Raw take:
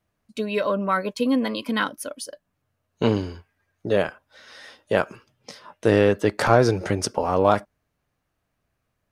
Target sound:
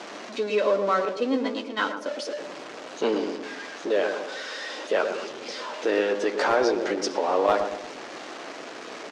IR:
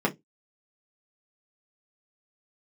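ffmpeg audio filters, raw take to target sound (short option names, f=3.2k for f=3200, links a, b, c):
-filter_complex "[0:a]aeval=exprs='val(0)+0.5*0.0447*sgn(val(0))':c=same,highpass=f=300:w=0.5412,highpass=f=300:w=1.3066,asettb=1/sr,asplit=3[a][b][c];[a]atrim=end=1.054[d];[b]atrim=start=1.05:end=2.06,asetpts=PTS-STARTPTS,afade=t=in:d=0.004:c=qsin,afade=t=out:st=1.006:d=0.004:c=qsin,agate=range=-33dB:threshold=-22dB:ratio=3:detection=peak[e];[c]atrim=start=2.056[f];[d][e]acrossfade=d=0.004:c1=hsin:c2=qsin[g];[g][f]acrossfade=d=0.004:c1=qsin:c2=hsin,lowpass=f=6.3k:w=0.5412,lowpass=f=6.3k:w=1.3066,acrossover=split=710[h][i];[h]alimiter=limit=-16.5dB:level=0:latency=1:release=101[j];[i]flanger=delay=8.2:depth=5:regen=-32:speed=0.42:shape=triangular[k];[j][k]amix=inputs=2:normalize=0,asoftclip=type=hard:threshold=-12.5dB,asplit=2[l][m];[m]adelay=116,lowpass=f=860:p=1,volume=-5dB,asplit=2[n][o];[o]adelay=116,lowpass=f=860:p=1,volume=0.51,asplit=2[p][q];[q]adelay=116,lowpass=f=860:p=1,volume=0.51,asplit=2[r][s];[s]adelay=116,lowpass=f=860:p=1,volume=0.51,asplit=2[t][u];[u]adelay=116,lowpass=f=860:p=1,volume=0.51,asplit=2[v][w];[w]adelay=116,lowpass=f=860:p=1,volume=0.51[x];[l][n][p][r][t][v][x]amix=inputs=7:normalize=0"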